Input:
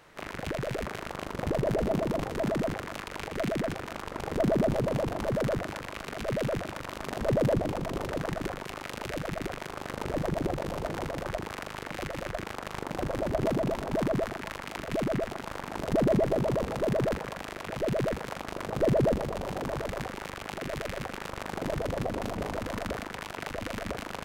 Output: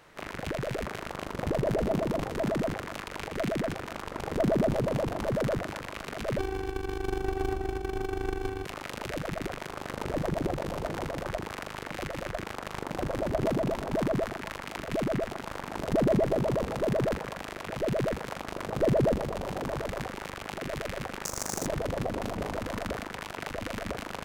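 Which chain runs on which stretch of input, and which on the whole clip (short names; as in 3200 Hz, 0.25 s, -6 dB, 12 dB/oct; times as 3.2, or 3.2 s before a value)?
6.38–8.65 robotiser 382 Hz + running maximum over 65 samples
21.25–21.66 resonant high shelf 4500 Hz +12.5 dB, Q 3 + companded quantiser 4-bit
whole clip: dry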